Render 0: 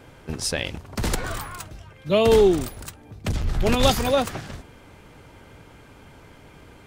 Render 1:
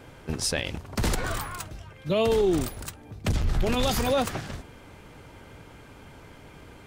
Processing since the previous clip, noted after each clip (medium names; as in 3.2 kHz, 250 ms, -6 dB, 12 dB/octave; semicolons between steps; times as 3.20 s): peak limiter -15.5 dBFS, peak gain reduction 9.5 dB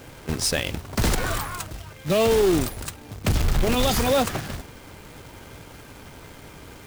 companded quantiser 4-bit; trim +3.5 dB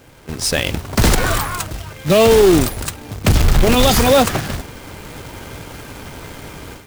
level rider gain up to 13 dB; trim -3 dB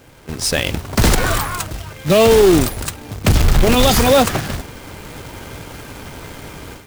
no audible change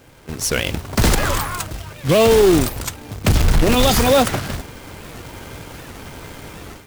warped record 78 rpm, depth 250 cents; trim -2 dB